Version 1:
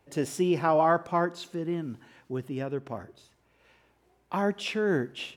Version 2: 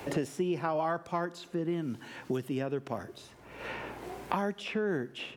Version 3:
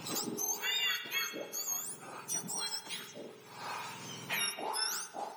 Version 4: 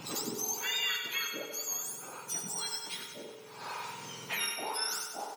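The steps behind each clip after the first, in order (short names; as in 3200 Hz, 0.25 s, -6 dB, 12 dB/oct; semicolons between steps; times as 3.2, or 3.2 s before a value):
three-band squash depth 100%; gain -5 dB
spectrum mirrored in octaves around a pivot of 1500 Hz; spring tank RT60 1.2 s, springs 44 ms, chirp 60 ms, DRR 6.5 dB; gain +1 dB
feedback echo 95 ms, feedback 57%, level -7 dB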